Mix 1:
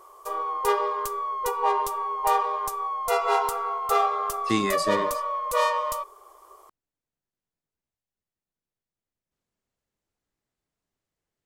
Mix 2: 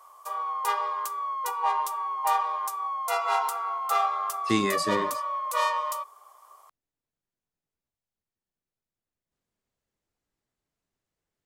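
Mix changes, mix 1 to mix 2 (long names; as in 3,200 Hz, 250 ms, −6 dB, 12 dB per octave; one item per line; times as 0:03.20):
background: add high-pass filter 670 Hz 24 dB per octave
reverb: off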